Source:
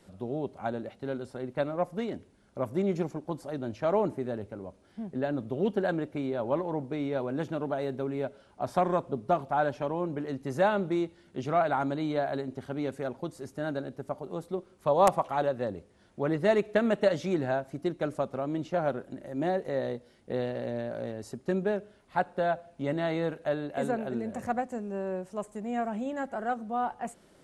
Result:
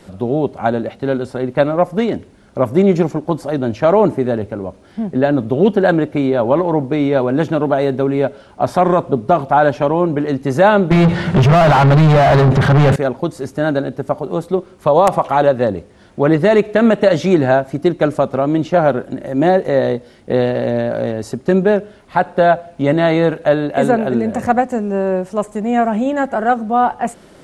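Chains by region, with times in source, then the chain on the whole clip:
10.91–12.96 resonant low shelf 210 Hz +10 dB, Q 3 + compressor 3:1, threshold -27 dBFS + overdrive pedal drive 36 dB, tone 1300 Hz, clips at -19.5 dBFS
whole clip: high shelf 6300 Hz -5 dB; maximiser +17.5 dB; gain -1 dB

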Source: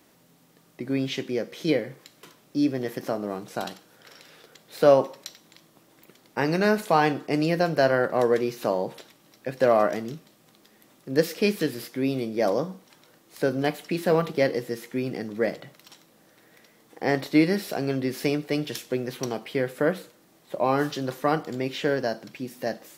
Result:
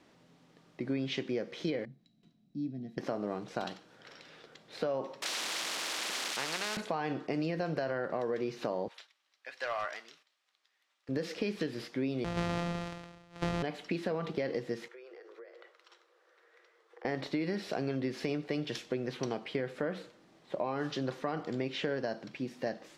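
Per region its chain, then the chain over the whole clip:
1.85–2.98 passive tone stack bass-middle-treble 10-0-1 + small resonant body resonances 210/690/3900 Hz, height 18 dB
5.22–6.77 switching spikes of -19.5 dBFS + HPF 550 Hz + spectral compressor 4:1
8.88–11.09 gate -52 dBFS, range -10 dB + HPF 1400 Hz + overloaded stage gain 24 dB
12.24–13.63 sample sorter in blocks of 256 samples + doubler 19 ms -11 dB + sustainer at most 51 dB/s
14.88–17.05 rippled Chebyshev high-pass 340 Hz, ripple 9 dB + compressor 8:1, threshold -45 dBFS
whole clip: LPF 4800 Hz 12 dB/oct; limiter -16 dBFS; compressor, threshold -27 dBFS; gain -2.5 dB

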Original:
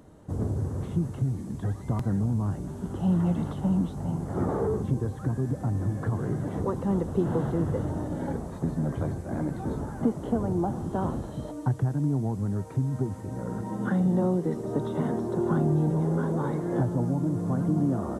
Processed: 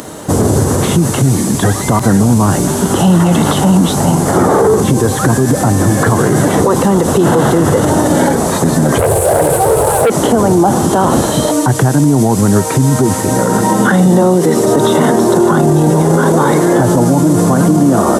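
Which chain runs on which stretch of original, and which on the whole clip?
8.98–10.1 EQ curve 110 Hz 0 dB, 260 Hz -21 dB, 460 Hz +7 dB, 4900 Hz -22 dB, 8600 Hz +3 dB + sample leveller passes 2
whole clip: HPF 360 Hz 6 dB/oct; high shelf 2800 Hz +11.5 dB; maximiser +29 dB; gain -1 dB

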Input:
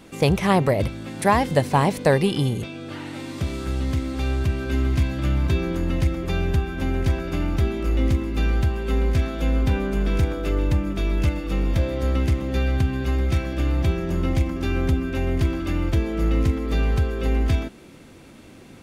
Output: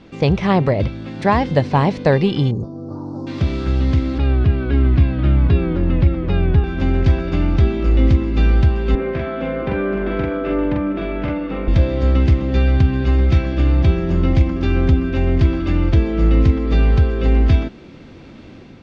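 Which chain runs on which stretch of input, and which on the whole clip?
2.51–3.27 elliptic band-stop 1100–5200 Hz, stop band 60 dB + high shelf 3500 Hz -11.5 dB
4.18–6.64 air absorption 220 m + shaped vibrato saw down 3.8 Hz, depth 100 cents
8.95–11.68 three-band isolator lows -19 dB, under 180 Hz, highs -21 dB, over 2800 Hz + doubler 44 ms -2.5 dB
whole clip: LPF 5200 Hz 24 dB/oct; low shelf 390 Hz +4.5 dB; AGC gain up to 4 dB

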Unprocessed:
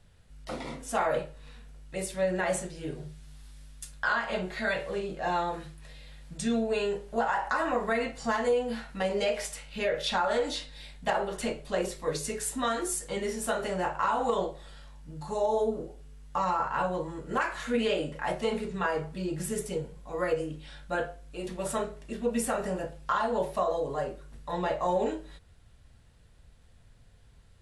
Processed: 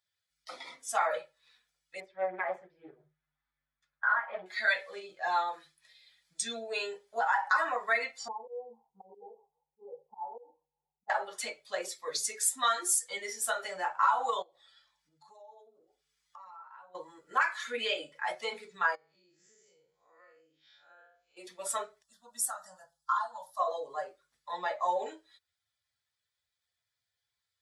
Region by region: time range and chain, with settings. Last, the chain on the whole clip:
2–4.46 LPF 1500 Hz + Doppler distortion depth 0.33 ms
8.28–11.1 steep low-pass 890 Hz 48 dB/oct + fixed phaser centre 410 Hz, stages 8 + auto swell 0.116 s
14.42–16.95 high shelf 6900 Hz -6.5 dB + compressor 5:1, threshold -42 dBFS + mismatched tape noise reduction encoder only
18.95–21.37 time blur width 0.15 s + Chebyshev low-pass 7500 Hz, order 8 + compressor 4:1, threshold -45 dBFS
22.02–23.6 bell 390 Hz -5.5 dB 2.6 oct + fixed phaser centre 960 Hz, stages 4
whole clip: per-bin expansion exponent 1.5; HPF 1000 Hz 12 dB/oct; notch 2800 Hz, Q 7.8; gain +7 dB

